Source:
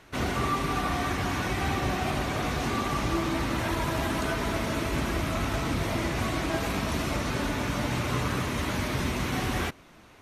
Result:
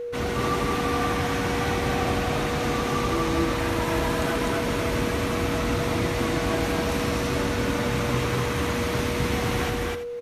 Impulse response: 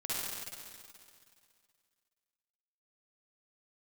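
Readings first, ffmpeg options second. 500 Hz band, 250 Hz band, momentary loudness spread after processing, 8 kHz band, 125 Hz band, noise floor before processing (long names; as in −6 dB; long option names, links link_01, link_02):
+7.0 dB, +3.5 dB, 1 LU, +3.0 dB, +2.5 dB, −53 dBFS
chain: -filter_complex "[0:a]asplit=2[link_01][link_02];[link_02]aecho=0:1:163.3|250.7:0.282|0.891[link_03];[link_01][link_03]amix=inputs=2:normalize=0,aeval=exprs='val(0)+0.0355*sin(2*PI*480*n/s)':channel_layout=same,asplit=2[link_04][link_05];[link_05]aecho=0:1:84:0.299[link_06];[link_04][link_06]amix=inputs=2:normalize=0"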